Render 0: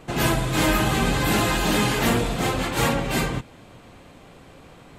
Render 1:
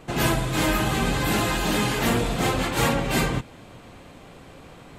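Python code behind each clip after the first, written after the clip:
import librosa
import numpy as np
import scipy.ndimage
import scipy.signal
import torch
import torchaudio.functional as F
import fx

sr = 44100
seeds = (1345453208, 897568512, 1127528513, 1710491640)

y = fx.rider(x, sr, range_db=10, speed_s=0.5)
y = y * 10.0 ** (-1.0 / 20.0)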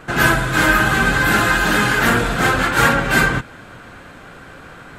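y = fx.peak_eq(x, sr, hz=1500.0, db=14.5, octaves=0.54)
y = y * 10.0 ** (4.0 / 20.0)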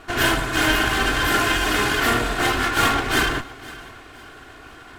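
y = fx.lower_of_two(x, sr, delay_ms=2.8)
y = fx.echo_feedback(y, sr, ms=512, feedback_pct=36, wet_db=-19)
y = y * 10.0 ** (-2.5 / 20.0)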